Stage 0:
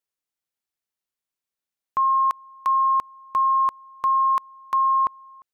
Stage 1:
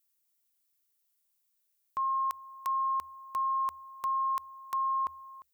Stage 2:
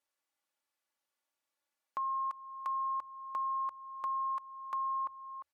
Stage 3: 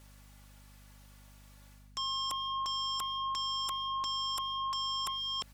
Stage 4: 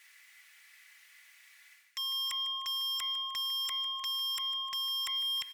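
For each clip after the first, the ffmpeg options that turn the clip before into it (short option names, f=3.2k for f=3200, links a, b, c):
-af "equalizer=f=77:t=o:w=0.21:g=11,alimiter=level_in=0.5dB:limit=-24dB:level=0:latency=1:release=18,volume=-0.5dB,aemphasis=mode=production:type=75kf,volume=-3dB"
-af "aecho=1:1:3.5:0.65,acompressor=threshold=-50dB:ratio=2,bandpass=f=860:t=q:w=0.71:csg=0,volume=6.5dB"
-af "areverse,acompressor=threshold=-46dB:ratio=12,areverse,aeval=exprs='0.0158*sin(PI/2*7.94*val(0)/0.0158)':c=same,aeval=exprs='val(0)+0.00112*(sin(2*PI*50*n/s)+sin(2*PI*2*50*n/s)/2+sin(2*PI*3*50*n/s)/3+sin(2*PI*4*50*n/s)/4+sin(2*PI*5*50*n/s)/5)':c=same,volume=3.5dB"
-af "highpass=f=2k:t=q:w=5.6,asoftclip=type=hard:threshold=-31dB,aecho=1:1:152|304|456|608|760:0.15|0.0778|0.0405|0.021|0.0109"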